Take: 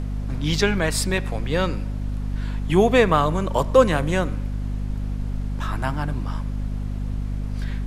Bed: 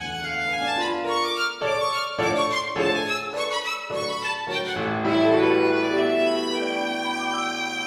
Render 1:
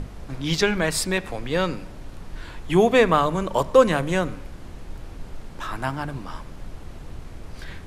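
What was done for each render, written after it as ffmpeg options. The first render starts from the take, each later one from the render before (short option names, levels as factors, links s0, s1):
-af "bandreject=f=50:t=h:w=6,bandreject=f=100:t=h:w=6,bandreject=f=150:t=h:w=6,bandreject=f=200:t=h:w=6,bandreject=f=250:t=h:w=6"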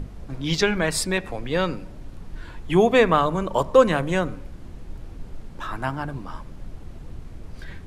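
-af "afftdn=nr=6:nf=-40"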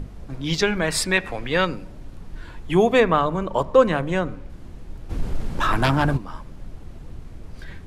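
-filter_complex "[0:a]asettb=1/sr,asplit=3[s0][s1][s2];[s0]atrim=end=0.904[s3];[s1]atrim=start=0.9:end=1.65,asetpts=PTS-STARTPTS,afade=t=in:d=0.004:c=qsin,afade=t=out:st=0.746:d=0.004:c=qsin,equalizer=f=2000:t=o:w=2.1:g=7[s4];[s2]atrim=start=1.646[s5];[s3][s4]acrossfade=d=0.004:c1=hsin:c2=qsin[s6];[s6][s5]acrossfade=d=0.004:c1=qsin:c2=hsin,asettb=1/sr,asplit=3[s7][s8][s9];[s7]atrim=end=3.004[s10];[s8]atrim=start=3:end=4.5,asetpts=PTS-STARTPTS,afade=t=in:d=0.004:c=qsin,afade=t=out:st=1.496:d=0.004:c=qsin,highshelf=f=6000:g=-10[s11];[s9]atrim=start=4.496[s12];[s10][s11]acrossfade=d=0.004:c1=hsin:c2=qsin[s13];[s13][s12]acrossfade=d=0.004:c1=qsin:c2=hsin,asplit=3[s14][s15][s16];[s14]afade=t=out:st=5.09:d=0.02[s17];[s15]aeval=exprs='0.251*sin(PI/2*2.51*val(0)/0.251)':c=same,afade=t=in:st=5.09:d=0.02,afade=t=out:st=6.16:d=0.02[s18];[s16]afade=t=in:st=6.16:d=0.02[s19];[s17][s18][s19]amix=inputs=3:normalize=0"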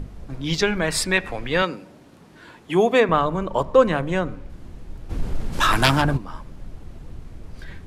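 -filter_complex "[0:a]asettb=1/sr,asplit=3[s0][s1][s2];[s0]atrim=end=1.624[s3];[s1]atrim=start=1.62:end=3.09,asetpts=PTS-STARTPTS,afade=t=in:d=0.004:c=qsin,afade=t=out:st=1.466:d=0.004:c=qsin,highpass=200[s4];[s2]atrim=start=3.086[s5];[s3][s4]acrossfade=d=0.004:c1=hsin:c2=qsin[s6];[s6][s5]acrossfade=d=0.004:c1=qsin:c2=hsin,asplit=3[s7][s8][s9];[s7]afade=t=out:st=5.52:d=0.02[s10];[s8]highshelf=f=2200:g=11.5,afade=t=in:st=5.52:d=0.02,afade=t=out:st=6:d=0.02[s11];[s9]afade=t=in:st=6:d=0.02[s12];[s10][s11][s12]amix=inputs=3:normalize=0"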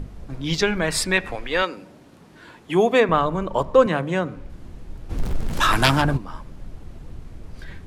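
-filter_complex "[0:a]asettb=1/sr,asplit=3[s0][s1][s2];[s0]atrim=end=1.354[s3];[s1]atrim=start=1.35:end=1.77,asetpts=PTS-STARTPTS,afade=t=in:d=0.004:c=qsin,afade=t=out:st=0.416:d=0.004:c=qsin,equalizer=f=140:w=1.2:g=-14.5[s4];[s2]atrim=start=1.766[s5];[s3][s4]acrossfade=d=0.004:c1=hsin:c2=qsin[s6];[s6][s5]acrossfade=d=0.004:c1=qsin:c2=hsin,asettb=1/sr,asplit=3[s7][s8][s9];[s7]atrim=end=3.864[s10];[s8]atrim=start=3.86:end=4.36,asetpts=PTS-STARTPTS,afade=t=in:d=0.004:c=qsin,afade=t=out:st=0.496:d=0.004:c=qsin,highpass=f=100:w=0.5412,highpass=f=100:w=1.3066[s11];[s9]atrim=start=4.356[s12];[s10][s11]acrossfade=d=0.004:c1=hsin:c2=qsin[s13];[s13][s12]acrossfade=d=0.004:c1=qsin:c2=hsin,asettb=1/sr,asplit=3[s14][s15][s16];[s14]atrim=end=5.184[s17];[s15]atrim=start=5.18:end=5.58,asetpts=PTS-STARTPTS,afade=t=in:d=0.004:c=qsin,afade=t=out:st=0.396:d=0.004:c=qsin,aeval=exprs='val(0)+0.5*0.0376*sgn(val(0))':c=same[s18];[s16]atrim=start=5.576[s19];[s17][s18]acrossfade=d=0.004:c1=hsin:c2=qsin[s20];[s20][s19]acrossfade=d=0.004:c1=qsin:c2=hsin"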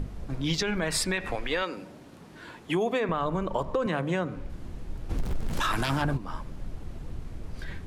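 -af "alimiter=limit=0.211:level=0:latency=1:release=32,acompressor=threshold=0.0562:ratio=3"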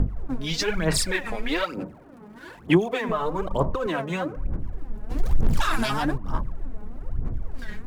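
-filter_complex "[0:a]aphaser=in_gain=1:out_gain=1:delay=4.8:decay=0.73:speed=1.1:type=sinusoidal,acrossover=split=600|1900[s0][s1][s2];[s2]aeval=exprs='sgn(val(0))*max(abs(val(0))-0.0015,0)':c=same[s3];[s0][s1][s3]amix=inputs=3:normalize=0"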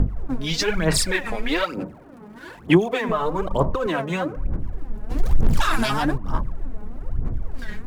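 -af "volume=1.41"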